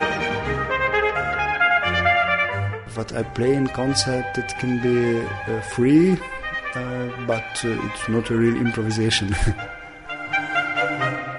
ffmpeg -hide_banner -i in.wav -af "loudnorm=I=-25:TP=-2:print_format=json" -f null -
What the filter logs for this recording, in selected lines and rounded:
"input_i" : "-21.8",
"input_tp" : "-5.6",
"input_lra" : "2.6",
"input_thresh" : "-31.9",